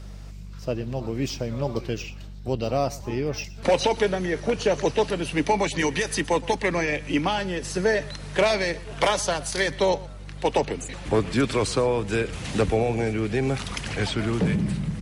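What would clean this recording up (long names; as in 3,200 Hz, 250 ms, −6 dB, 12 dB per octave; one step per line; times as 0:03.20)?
hum removal 49.1 Hz, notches 4
echo removal 119 ms −20.5 dB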